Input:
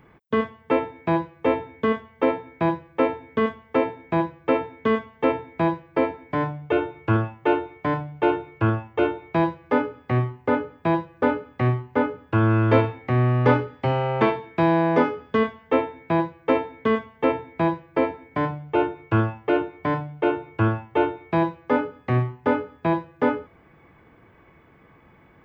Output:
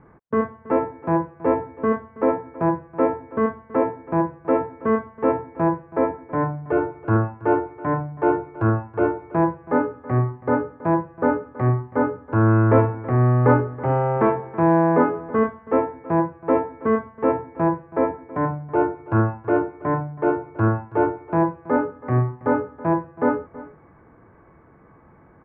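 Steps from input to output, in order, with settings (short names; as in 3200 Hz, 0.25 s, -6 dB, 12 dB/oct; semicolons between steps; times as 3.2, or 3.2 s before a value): LPF 1600 Hz 24 dB/oct; transient shaper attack -4 dB, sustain +1 dB; on a send: echo 0.325 s -18 dB; on the sum: gain +3 dB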